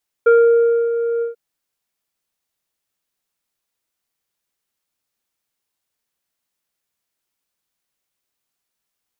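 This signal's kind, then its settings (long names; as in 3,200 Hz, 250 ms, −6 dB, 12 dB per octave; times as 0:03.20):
subtractive voice square A#4 24 dB per octave, low-pass 990 Hz, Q 1.3, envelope 0.5 octaves, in 0.24 s, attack 10 ms, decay 0.63 s, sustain −10 dB, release 0.13 s, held 0.96 s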